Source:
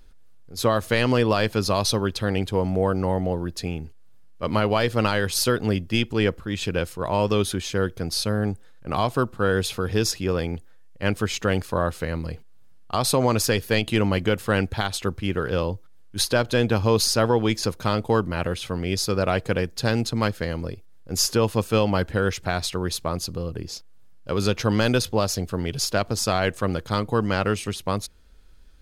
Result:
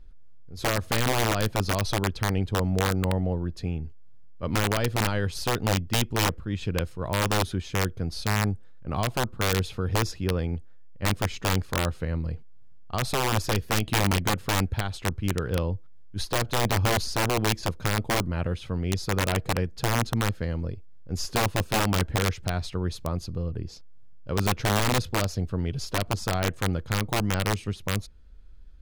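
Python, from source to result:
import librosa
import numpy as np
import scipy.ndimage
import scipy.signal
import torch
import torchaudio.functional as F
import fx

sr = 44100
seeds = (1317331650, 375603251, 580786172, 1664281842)

y = fx.lowpass(x, sr, hz=3600.0, slope=6)
y = fx.low_shelf(y, sr, hz=190.0, db=11.0)
y = (np.mod(10.0 ** (9.5 / 20.0) * y + 1.0, 2.0) - 1.0) / 10.0 ** (9.5 / 20.0)
y = F.gain(torch.from_numpy(y), -7.0).numpy()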